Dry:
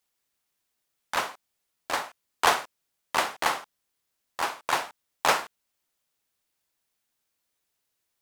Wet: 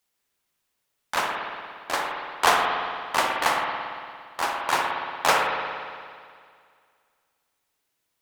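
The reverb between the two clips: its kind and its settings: spring tank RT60 2.1 s, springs 57 ms, chirp 75 ms, DRR 0.5 dB; trim +1.5 dB

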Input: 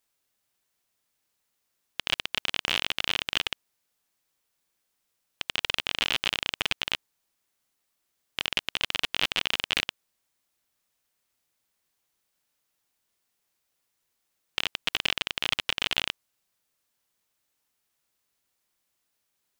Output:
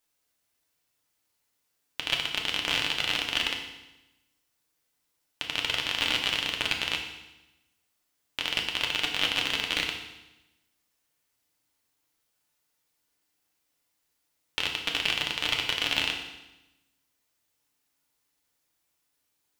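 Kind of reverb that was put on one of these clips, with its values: FDN reverb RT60 0.97 s, low-frequency decay 1.25×, high-frequency decay 1×, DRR 1 dB; trim -1.5 dB

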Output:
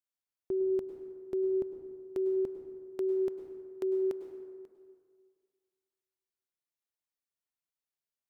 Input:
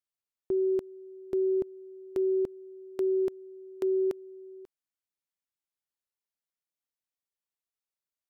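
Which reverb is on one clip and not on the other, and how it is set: plate-style reverb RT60 1.9 s, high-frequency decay 0.45×, pre-delay 90 ms, DRR 7.5 dB; trim -4 dB

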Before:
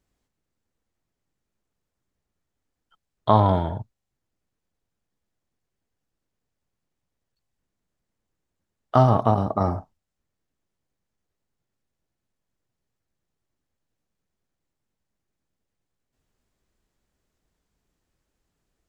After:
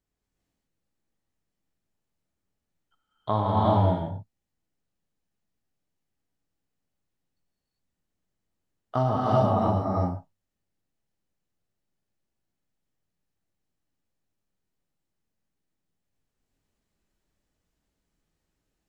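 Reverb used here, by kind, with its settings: gated-style reverb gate 420 ms rising, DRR -6 dB; trim -9.5 dB

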